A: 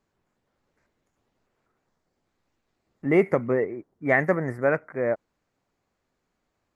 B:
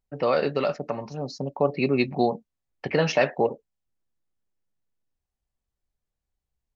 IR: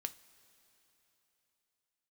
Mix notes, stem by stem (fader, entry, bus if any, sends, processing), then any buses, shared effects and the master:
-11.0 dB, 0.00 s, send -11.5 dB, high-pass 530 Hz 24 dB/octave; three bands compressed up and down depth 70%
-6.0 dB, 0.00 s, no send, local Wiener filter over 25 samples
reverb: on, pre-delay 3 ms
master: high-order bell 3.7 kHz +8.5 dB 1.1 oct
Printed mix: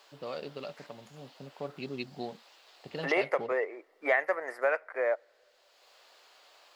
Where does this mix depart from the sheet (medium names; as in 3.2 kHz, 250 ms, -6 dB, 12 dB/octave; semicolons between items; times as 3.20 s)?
stem A -11.0 dB -> -3.5 dB; stem B -6.0 dB -> -16.0 dB